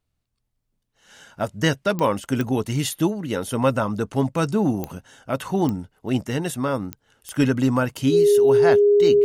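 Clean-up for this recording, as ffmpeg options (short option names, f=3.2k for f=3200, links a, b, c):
-af "adeclick=t=4,bandreject=f=410:w=30"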